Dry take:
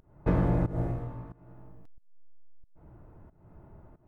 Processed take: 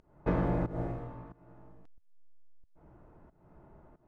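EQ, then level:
high-frequency loss of the air 55 metres
parametric band 98 Hz −9.5 dB 0.35 octaves
low-shelf EQ 240 Hz −5.5 dB
0.0 dB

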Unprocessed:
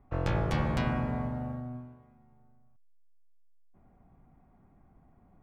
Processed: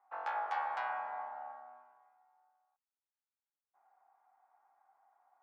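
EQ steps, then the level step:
four-pole ladder high-pass 760 Hz, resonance 75%
high-frequency loss of the air 74 metres
parametric band 1,500 Hz +9.5 dB 0.92 octaves
0.0 dB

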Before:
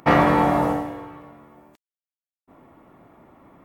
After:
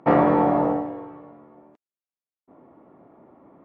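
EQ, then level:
resonant band-pass 480 Hz, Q 0.74
low-shelf EQ 350 Hz +4.5 dB
0.0 dB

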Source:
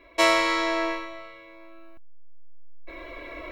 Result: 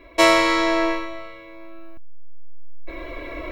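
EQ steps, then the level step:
low-shelf EQ 420 Hz +7 dB
high-shelf EQ 11,000 Hz +4 dB
+3.5 dB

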